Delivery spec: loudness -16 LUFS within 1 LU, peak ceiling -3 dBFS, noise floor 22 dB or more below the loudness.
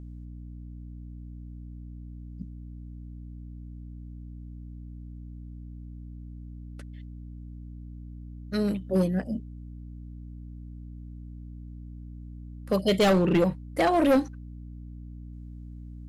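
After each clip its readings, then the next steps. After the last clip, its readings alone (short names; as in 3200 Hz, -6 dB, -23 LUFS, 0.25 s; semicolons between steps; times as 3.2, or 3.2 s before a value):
clipped 0.7%; flat tops at -16.5 dBFS; hum 60 Hz; harmonics up to 300 Hz; hum level -39 dBFS; loudness -25.0 LUFS; peak -16.5 dBFS; loudness target -16.0 LUFS
-> clip repair -16.5 dBFS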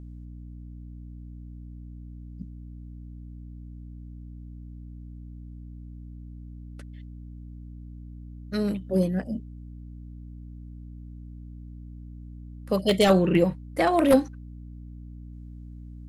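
clipped 0.0%; hum 60 Hz; harmonics up to 300 Hz; hum level -38 dBFS
-> de-hum 60 Hz, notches 5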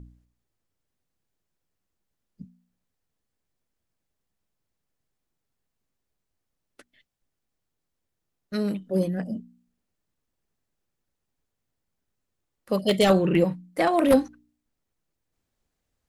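hum none; loudness -24.0 LUFS; peak -7.0 dBFS; loudness target -16.0 LUFS
-> gain +8 dB; limiter -3 dBFS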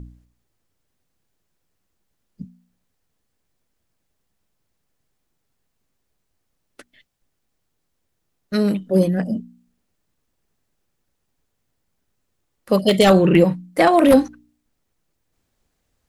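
loudness -16.5 LUFS; peak -3.0 dBFS; noise floor -74 dBFS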